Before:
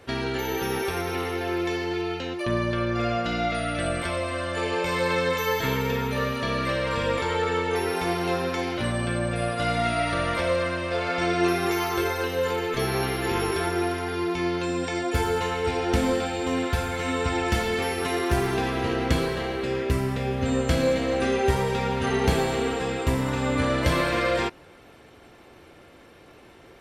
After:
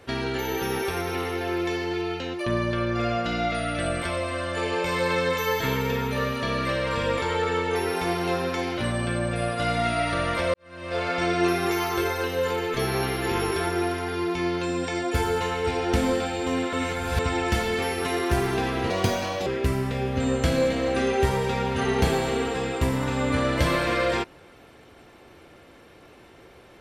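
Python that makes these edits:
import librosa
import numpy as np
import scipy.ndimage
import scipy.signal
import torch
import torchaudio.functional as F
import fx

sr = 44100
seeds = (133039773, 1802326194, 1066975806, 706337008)

y = fx.edit(x, sr, fx.fade_in_span(start_s=10.54, length_s=0.44, curve='qua'),
    fx.reverse_span(start_s=16.73, length_s=0.46),
    fx.speed_span(start_s=18.9, length_s=0.82, speed=1.45), tone=tone)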